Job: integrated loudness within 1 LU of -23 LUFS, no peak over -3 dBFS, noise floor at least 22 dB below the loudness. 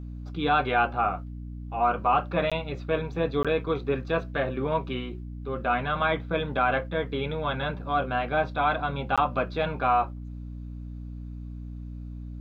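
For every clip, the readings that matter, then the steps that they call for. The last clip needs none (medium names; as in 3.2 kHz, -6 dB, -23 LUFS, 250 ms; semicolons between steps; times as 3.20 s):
dropouts 3; longest dropout 16 ms; hum 60 Hz; highest harmonic 300 Hz; hum level -35 dBFS; loudness -27.0 LUFS; peak level -12.0 dBFS; loudness target -23.0 LUFS
-> interpolate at 2.50/3.43/9.16 s, 16 ms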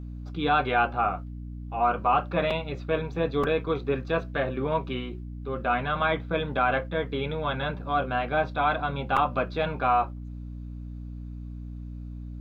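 dropouts 0; hum 60 Hz; highest harmonic 300 Hz; hum level -35 dBFS
-> de-hum 60 Hz, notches 5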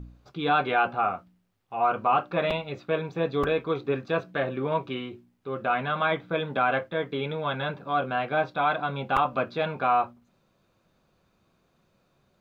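hum not found; loudness -27.5 LUFS; peak level -10.5 dBFS; loudness target -23.0 LUFS
-> trim +4.5 dB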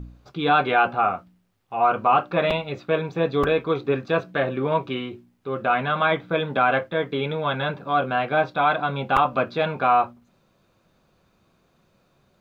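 loudness -23.0 LUFS; peak level -6.0 dBFS; noise floor -65 dBFS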